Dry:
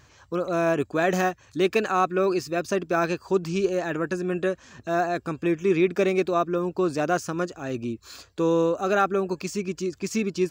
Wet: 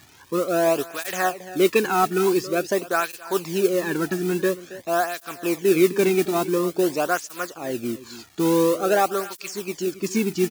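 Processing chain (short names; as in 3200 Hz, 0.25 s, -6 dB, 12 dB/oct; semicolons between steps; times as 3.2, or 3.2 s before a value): modulation noise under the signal 14 dB; crackle 540/s -41 dBFS; echo 0.274 s -17 dB; tape flanging out of phase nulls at 0.48 Hz, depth 2 ms; gain +4.5 dB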